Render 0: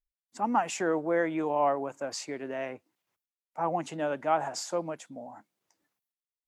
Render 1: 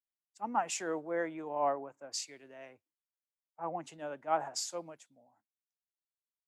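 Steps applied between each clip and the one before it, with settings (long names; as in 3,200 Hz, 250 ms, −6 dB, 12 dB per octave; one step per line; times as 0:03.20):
parametric band 190 Hz −3 dB 1.2 octaves
multiband upward and downward expander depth 100%
level −8.5 dB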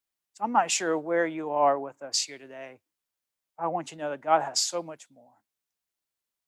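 dynamic equaliser 3,800 Hz, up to +5 dB, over −53 dBFS, Q 1.1
level +8.5 dB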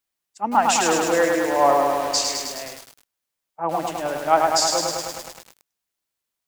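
feedback echo at a low word length 104 ms, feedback 80%, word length 7 bits, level −3 dB
level +4.5 dB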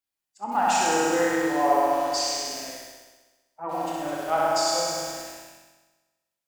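spectral magnitudes quantised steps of 15 dB
flutter between parallel walls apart 11 metres, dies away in 1.2 s
convolution reverb RT60 0.40 s, pre-delay 20 ms, DRR 3 dB
level −8.5 dB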